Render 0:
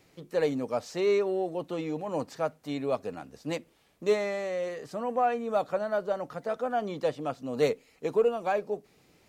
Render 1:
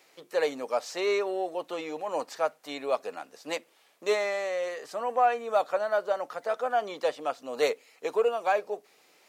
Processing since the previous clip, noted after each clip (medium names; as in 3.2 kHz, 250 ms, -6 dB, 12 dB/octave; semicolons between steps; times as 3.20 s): high-pass 570 Hz 12 dB/octave; trim +4.5 dB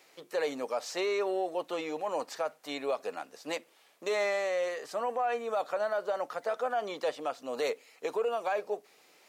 peak limiter -22.5 dBFS, peak gain reduction 9.5 dB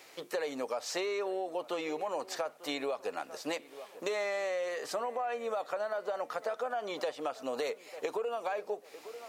resonant low shelf 110 Hz +6.5 dB, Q 1.5; feedback echo behind a low-pass 894 ms, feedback 33%, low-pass 2.9 kHz, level -21.5 dB; compression, threshold -38 dBFS, peak gain reduction 11 dB; trim +6 dB